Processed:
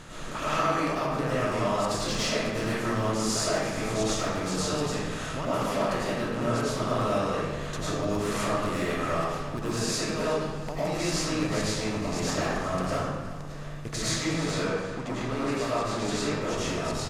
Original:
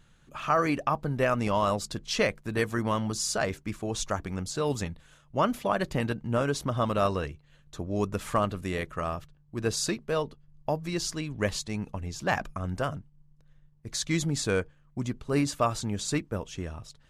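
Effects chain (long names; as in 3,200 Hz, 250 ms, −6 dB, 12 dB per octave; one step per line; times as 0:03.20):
compressor on every frequency bin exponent 0.6
0:14.18–0:16.42: bass and treble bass −4 dB, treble −9 dB
downward compressor 8 to 1, threshold −30 dBFS, peak gain reduction 13.5 dB
wave folding −23 dBFS
repeating echo 360 ms, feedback 44%, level −17 dB
comb and all-pass reverb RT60 1.3 s, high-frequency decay 0.75×, pre-delay 65 ms, DRR −9 dB
level −2.5 dB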